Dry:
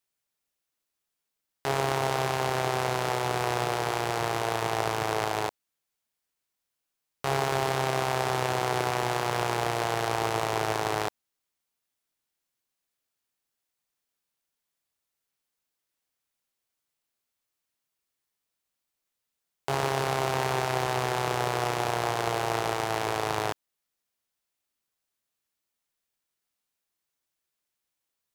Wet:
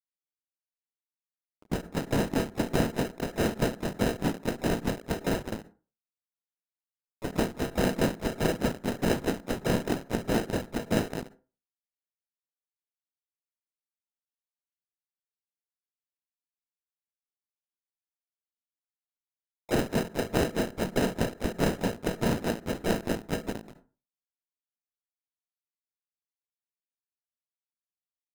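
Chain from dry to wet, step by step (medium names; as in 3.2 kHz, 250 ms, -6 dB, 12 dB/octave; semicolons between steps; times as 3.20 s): spectral peaks clipped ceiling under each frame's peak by 19 dB; trance gate ".x.xx.x." 191 bpm -60 dB; peaking EQ 660 Hz +11.5 dB 0.26 oct; speakerphone echo 210 ms, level -11 dB; in parallel at -9.5 dB: fuzz box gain 46 dB, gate -39 dBFS; on the sum: sample-and-hold 39×; small resonant body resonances 220/970 Hz, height 8 dB, ringing for 25 ms; gate -43 dBFS, range -32 dB; harmony voices -4 st -6 dB, +5 st -13 dB; on a send at -21 dB: reverberation RT60 0.35 s, pre-delay 42 ms; on the sum: endings held to a fixed fall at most 190 dB/s; trim -7 dB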